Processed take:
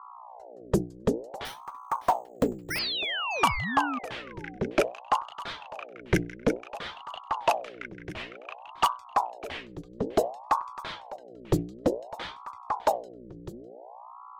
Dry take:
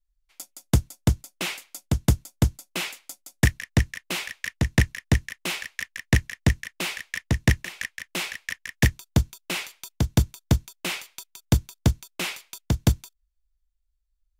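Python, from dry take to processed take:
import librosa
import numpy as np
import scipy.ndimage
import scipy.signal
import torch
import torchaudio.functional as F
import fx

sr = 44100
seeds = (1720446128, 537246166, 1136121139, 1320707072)

y = fx.bin_expand(x, sr, power=1.5)
y = fx.hum_notches(y, sr, base_hz=60, count=9)
y = fx.add_hum(y, sr, base_hz=60, snr_db=15)
y = fx.env_lowpass(y, sr, base_hz=1400.0, full_db=-16.0)
y = fx.spec_paint(y, sr, seeds[0], shape='fall', start_s=2.7, length_s=1.29, low_hz=450.0, high_hz=5800.0, level_db=-28.0)
y = y + 10.0 ** (-17.0 / 20.0) * np.pad(y, (int(604 * sr / 1000.0), 0))[:len(y)]
y = fx.resample_bad(y, sr, factor=6, down='none', up='hold', at=(1.45, 2.79))
y = fx.ring_lfo(y, sr, carrier_hz=650.0, swing_pct=65, hz=0.56)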